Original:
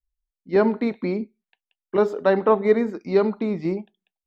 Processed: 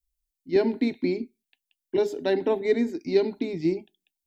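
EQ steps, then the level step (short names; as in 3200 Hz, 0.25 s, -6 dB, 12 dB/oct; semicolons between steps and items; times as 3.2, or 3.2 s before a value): tilt +2.5 dB/oct; resonant low shelf 360 Hz +12 dB, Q 3; fixed phaser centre 500 Hz, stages 4; 0.0 dB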